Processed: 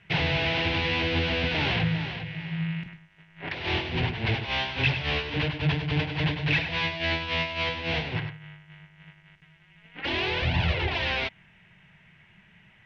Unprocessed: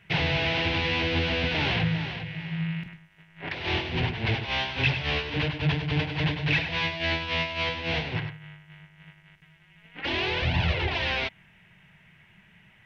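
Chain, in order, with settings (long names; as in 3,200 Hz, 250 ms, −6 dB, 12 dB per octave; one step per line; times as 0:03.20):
low-pass filter 7,000 Hz 12 dB per octave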